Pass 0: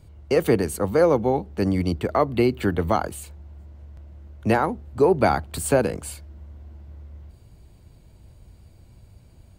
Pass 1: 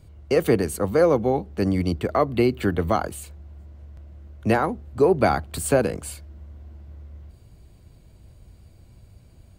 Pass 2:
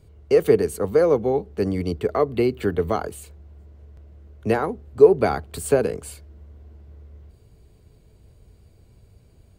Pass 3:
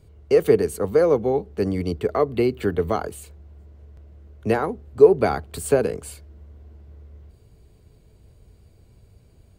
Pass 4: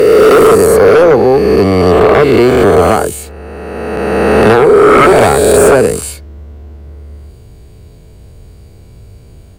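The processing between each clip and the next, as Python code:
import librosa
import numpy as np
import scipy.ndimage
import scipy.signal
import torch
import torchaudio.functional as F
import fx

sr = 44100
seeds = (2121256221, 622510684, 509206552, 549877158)

y1 = fx.notch(x, sr, hz=890.0, q=12.0)
y2 = fx.peak_eq(y1, sr, hz=430.0, db=11.5, octaves=0.23)
y2 = F.gain(torch.from_numpy(y2), -3.0).numpy()
y3 = y2
y4 = fx.spec_swells(y3, sr, rise_s=2.32)
y4 = fx.fold_sine(y4, sr, drive_db=11, ceiling_db=0.5)
y4 = F.gain(torch.from_numpy(y4), -2.0).numpy()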